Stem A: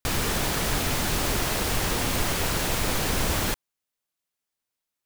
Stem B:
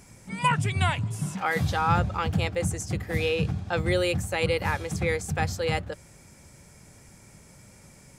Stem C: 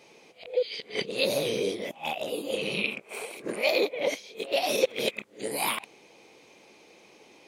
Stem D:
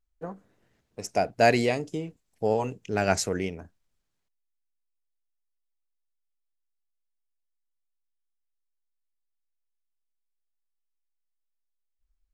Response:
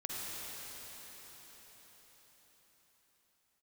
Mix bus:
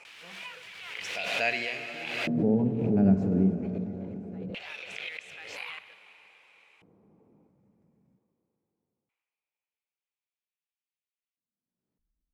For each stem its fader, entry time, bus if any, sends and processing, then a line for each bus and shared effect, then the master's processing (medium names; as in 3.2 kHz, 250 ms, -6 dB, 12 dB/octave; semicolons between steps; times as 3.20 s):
-14.0 dB, 0.00 s, no send, none
-10.5 dB, 0.00 s, send -15.5 dB, short-mantissa float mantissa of 2-bit; auto duck -11 dB, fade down 1.75 s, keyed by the fourth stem
-2.5 dB, 0.00 s, send -9.5 dB, local Wiener filter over 25 samples; peaking EQ 1.4 kHz +14.5 dB 1.7 oct; compression 4:1, threshold -33 dBFS, peak gain reduction 16 dB
-5.0 dB, 0.00 s, send -5 dB, de-hum 52.36 Hz, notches 7; harmonic-percussive split harmonic +9 dB; bass shelf 300 Hz +7 dB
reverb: on, RT60 5.5 s, pre-delay 43 ms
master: LFO band-pass square 0.22 Hz 210–2600 Hz; swell ahead of each attack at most 36 dB/s